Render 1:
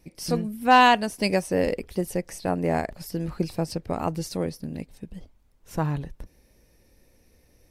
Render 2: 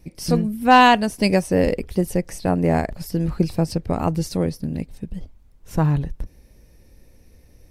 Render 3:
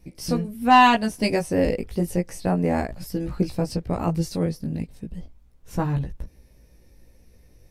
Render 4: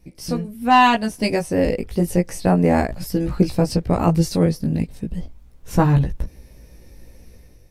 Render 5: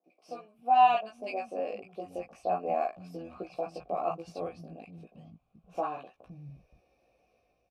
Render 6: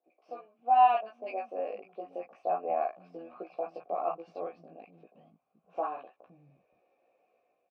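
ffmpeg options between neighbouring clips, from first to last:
ffmpeg -i in.wav -af "lowshelf=frequency=210:gain=8.5,volume=3dB" out.wav
ffmpeg -i in.wav -af "flanger=delay=15.5:depth=2.9:speed=0.32" out.wav
ffmpeg -i in.wav -af "dynaudnorm=framelen=560:gausssize=3:maxgain=10dB" out.wav
ffmpeg -i in.wav -filter_complex "[0:a]asplit=3[link_01][link_02][link_03];[link_01]bandpass=frequency=730:width_type=q:width=8,volume=0dB[link_04];[link_02]bandpass=frequency=1090:width_type=q:width=8,volume=-6dB[link_05];[link_03]bandpass=frequency=2440:width_type=q:width=8,volume=-9dB[link_06];[link_04][link_05][link_06]amix=inputs=3:normalize=0,acrossover=split=210|890[link_07][link_08][link_09];[link_09]adelay=40[link_10];[link_07]adelay=520[link_11];[link_11][link_08][link_10]amix=inputs=3:normalize=0" out.wav
ffmpeg -i in.wav -af "highpass=360,lowpass=2100" out.wav

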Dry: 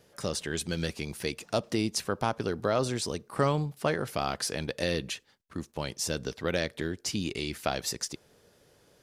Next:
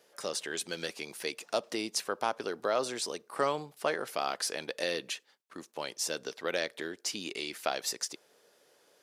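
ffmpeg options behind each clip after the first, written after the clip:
ffmpeg -i in.wav -af "highpass=410,volume=-1dB" out.wav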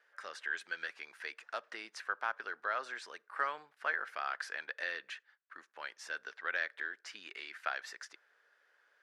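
ffmpeg -i in.wav -af "bandpass=frequency=1600:width_type=q:width=3.9:csg=0,volume=5.5dB" out.wav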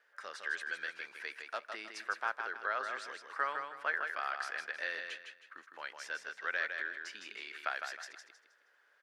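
ffmpeg -i in.wav -af "aecho=1:1:158|316|474|632:0.501|0.16|0.0513|0.0164" out.wav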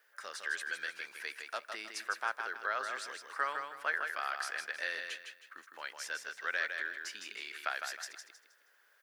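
ffmpeg -i in.wav -af "aemphasis=mode=production:type=50fm" out.wav

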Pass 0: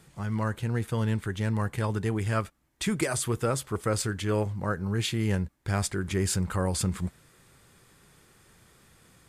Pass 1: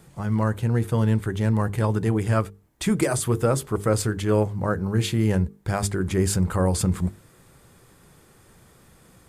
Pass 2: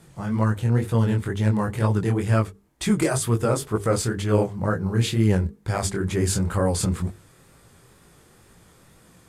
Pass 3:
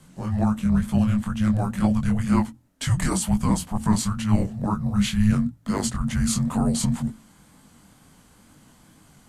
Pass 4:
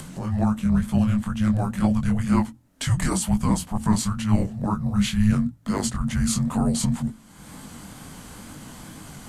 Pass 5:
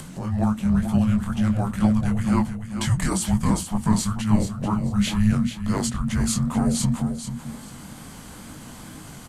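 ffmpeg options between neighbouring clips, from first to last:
ffmpeg -i in.wav -filter_complex "[0:a]highshelf=frequency=9800:gain=7,bandreject=frequency=50:width_type=h:width=6,bandreject=frequency=100:width_type=h:width=6,bandreject=frequency=150:width_type=h:width=6,bandreject=frequency=200:width_type=h:width=6,bandreject=frequency=250:width_type=h:width=6,bandreject=frequency=300:width_type=h:width=6,bandreject=frequency=350:width_type=h:width=6,bandreject=frequency=400:width_type=h:width=6,bandreject=frequency=450:width_type=h:width=6,acrossover=split=1100[link_01][link_02];[link_01]acontrast=85[link_03];[link_03][link_02]amix=inputs=2:normalize=0" out.wav
ffmpeg -i in.wav -af "crystalizer=i=2.5:c=0,flanger=delay=17.5:depth=7.9:speed=2.1,aemphasis=mode=reproduction:type=50fm,volume=2.5dB" out.wav
ffmpeg -i in.wav -af "afreqshift=-320" out.wav
ffmpeg -i in.wav -af "acompressor=mode=upward:threshold=-28dB:ratio=2.5" out.wav
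ffmpeg -i in.wav -af "aecho=1:1:437|874|1311:0.355|0.0781|0.0172" out.wav

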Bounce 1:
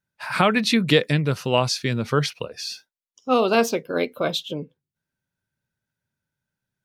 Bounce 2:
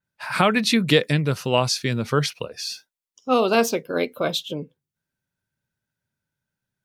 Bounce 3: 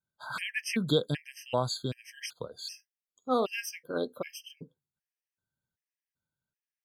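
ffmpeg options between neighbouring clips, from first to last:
ffmpeg -i in.wav -af "adynamicequalizer=threshold=0.0141:dfrequency=5800:dqfactor=0.7:tfrequency=5800:tqfactor=0.7:attack=5:release=100:ratio=0.375:range=2:mode=boostabove:tftype=highshelf" out.wav
ffmpeg -i in.wav -af "afftfilt=real='re*gt(sin(2*PI*1.3*pts/sr)*(1-2*mod(floor(b*sr/1024/1600),2)),0)':imag='im*gt(sin(2*PI*1.3*pts/sr)*(1-2*mod(floor(b*sr/1024/1600),2)),0)':win_size=1024:overlap=0.75,volume=-8dB" out.wav

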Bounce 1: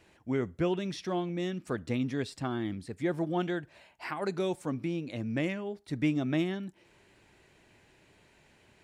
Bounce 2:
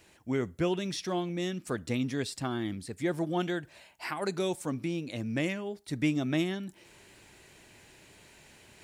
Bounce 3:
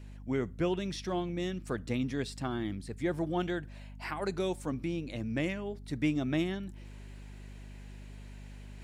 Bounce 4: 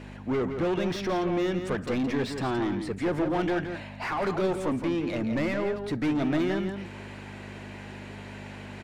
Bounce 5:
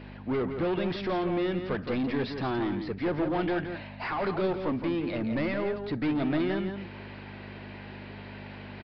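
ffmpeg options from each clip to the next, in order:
ffmpeg -i in.wav -af "highshelf=frequency=4600:gain=11.5,areverse,acompressor=mode=upward:threshold=-49dB:ratio=2.5,areverse" out.wav
ffmpeg -i in.wav -af "highshelf=frequency=4900:gain=-7,aeval=exprs='val(0)+0.00631*(sin(2*PI*50*n/s)+sin(2*PI*2*50*n/s)/2+sin(2*PI*3*50*n/s)/3+sin(2*PI*4*50*n/s)/4+sin(2*PI*5*50*n/s)/5)':channel_layout=same,volume=-1.5dB" out.wav
ffmpeg -i in.wav -filter_complex "[0:a]asplit=2[link_01][link_02];[link_02]highpass=frequency=720:poles=1,volume=27dB,asoftclip=type=tanh:threshold=-19dB[link_03];[link_01][link_03]amix=inputs=2:normalize=0,lowpass=frequency=1100:poles=1,volume=-6dB,asplit=2[link_04][link_05];[link_05]adelay=169.1,volume=-7dB,highshelf=frequency=4000:gain=-3.8[link_06];[link_04][link_06]amix=inputs=2:normalize=0" out.wav
ffmpeg -i in.wav -af "aresample=11025,aresample=44100,volume=-1.5dB" out.wav

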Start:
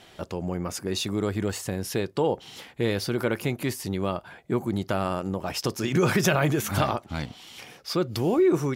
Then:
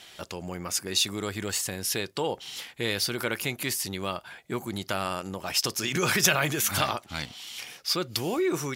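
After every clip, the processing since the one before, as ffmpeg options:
ffmpeg -i in.wav -af "tiltshelf=frequency=1300:gain=-7.5" out.wav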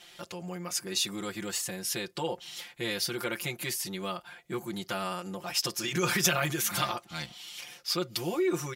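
ffmpeg -i in.wav -af "aecho=1:1:5.7:0.98,volume=-6.5dB" out.wav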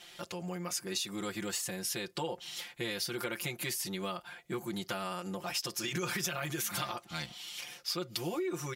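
ffmpeg -i in.wav -af "acompressor=threshold=-32dB:ratio=6" out.wav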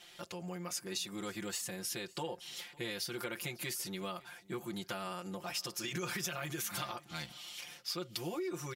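ffmpeg -i in.wav -af "aecho=1:1:554:0.075,volume=-3.5dB" out.wav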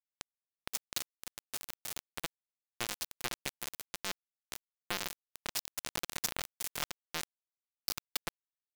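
ffmpeg -i in.wav -af "acrusher=bits=4:mix=0:aa=0.000001,volume=5dB" out.wav

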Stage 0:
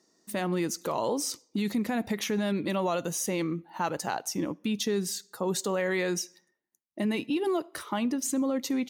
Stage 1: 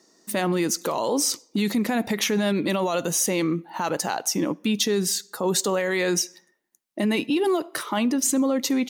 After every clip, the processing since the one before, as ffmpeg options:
ffmpeg -i in.wav -filter_complex "[0:a]equalizer=frequency=71:width=1:gain=-12.5,acrossover=split=3600[link_01][link_02];[link_01]alimiter=level_in=1dB:limit=-24dB:level=0:latency=1:release=28,volume=-1dB[link_03];[link_03][link_02]amix=inputs=2:normalize=0,volume=9dB" out.wav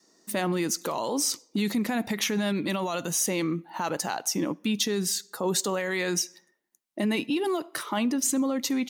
ffmpeg -i in.wav -af "adynamicequalizer=threshold=0.0126:dfrequency=480:dqfactor=1.5:tfrequency=480:tqfactor=1.5:attack=5:release=100:ratio=0.375:range=3:mode=cutabove:tftype=bell,volume=-3dB" out.wav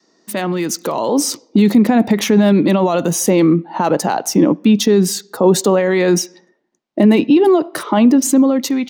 ffmpeg -i in.wav -filter_complex "[0:a]acrossover=split=120|860|6000[link_01][link_02][link_03][link_04];[link_02]dynaudnorm=framelen=690:gausssize=3:maxgain=10.5dB[link_05];[link_04]aeval=exprs='val(0)*gte(abs(val(0)),0.00794)':channel_layout=same[link_06];[link_01][link_05][link_03][link_06]amix=inputs=4:normalize=0,volume=6.5dB" out.wav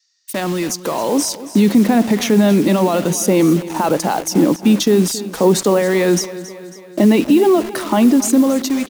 ffmpeg -i in.wav -filter_complex "[0:a]acrossover=split=2100[link_01][link_02];[link_01]acrusher=bits=4:mix=0:aa=0.000001[link_03];[link_03][link_02]amix=inputs=2:normalize=0,aecho=1:1:274|548|822|1096|1370:0.168|0.0923|0.0508|0.0279|0.0154,volume=-1dB" out.wav

